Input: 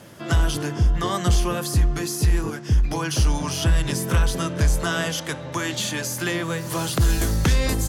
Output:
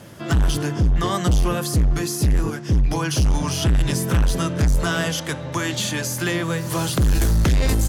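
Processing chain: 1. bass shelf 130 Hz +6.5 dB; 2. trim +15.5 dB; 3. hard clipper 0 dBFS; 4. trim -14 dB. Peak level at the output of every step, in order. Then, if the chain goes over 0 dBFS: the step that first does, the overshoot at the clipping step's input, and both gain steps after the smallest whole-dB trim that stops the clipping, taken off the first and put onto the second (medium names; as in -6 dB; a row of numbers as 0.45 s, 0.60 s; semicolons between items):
-6.0 dBFS, +9.5 dBFS, 0.0 dBFS, -14.0 dBFS; step 2, 9.5 dB; step 2 +5.5 dB, step 4 -4 dB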